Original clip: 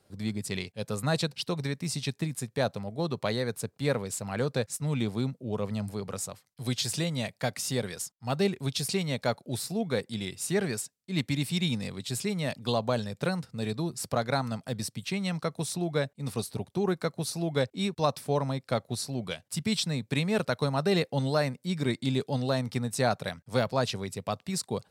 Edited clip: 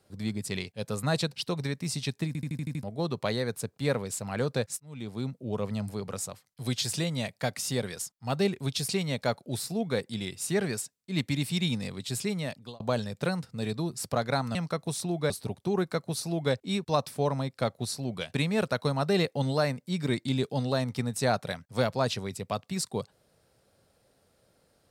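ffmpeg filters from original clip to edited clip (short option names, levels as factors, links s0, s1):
-filter_complex "[0:a]asplit=13[s0][s1][s2][s3][s4][s5][s6][s7][s8][s9][s10][s11][s12];[s0]atrim=end=2.352[s13];[s1]atrim=start=2.268:end=2.352[s14];[s2]atrim=start=2.268:end=2.352[s15];[s3]atrim=start=2.268:end=2.352[s16];[s4]atrim=start=2.268:end=2.352[s17];[s5]atrim=start=2.268:end=2.352[s18];[s6]atrim=start=2.268:end=2.352[s19];[s7]atrim=start=2.828:end=4.8,asetpts=PTS-STARTPTS,afade=t=out:st=1.968:d=0.004:c=hsin[s20];[s8]atrim=start=4.8:end=12.8,asetpts=PTS-STARTPTS,afade=t=in:d=0.63,afade=t=out:st=7.53:d=0.47[s21];[s9]atrim=start=12.8:end=14.552,asetpts=PTS-STARTPTS,afade=t=in:d=0.004:c=hsin[s22];[s10]atrim=start=15.268:end=16.022[s23];[s11]atrim=start=16.398:end=19.442[s24];[s12]atrim=start=20.108[s25];[s13][s14]acrossfade=d=0.004:c1=hsin:c2=hsin[s26];[s26][s15]acrossfade=d=0.004:c1=hsin:c2=hsin[s27];[s27][s16]acrossfade=d=0.004:c1=hsin:c2=hsin[s28];[s28][s17]acrossfade=d=0.004:c1=hsin:c2=hsin[s29];[s29][s18]acrossfade=d=0.004:c1=hsin:c2=hsin[s30];[s30][s19]acrossfade=d=0.004:c1=hsin:c2=hsin[s31];[s20][s21][s22]concat=n=3:v=0:a=1[s32];[s31][s32]acrossfade=d=0.004:c1=hsin:c2=hsin[s33];[s33][s23]acrossfade=d=0.004:c1=hsin:c2=hsin[s34];[s34][s24]acrossfade=d=0.004:c1=hsin:c2=hsin[s35];[s35][s25]acrossfade=d=0.004:c1=hsin:c2=hsin"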